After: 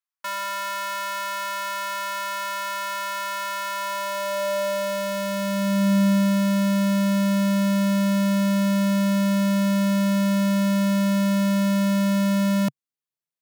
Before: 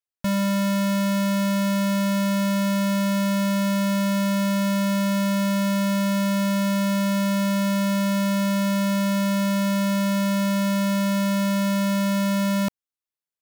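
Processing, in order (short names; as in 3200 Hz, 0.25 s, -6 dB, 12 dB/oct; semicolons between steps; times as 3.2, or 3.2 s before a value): formant shift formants +3 st; high-pass sweep 1100 Hz -> 140 Hz, 3.7–6.41; gain -2.5 dB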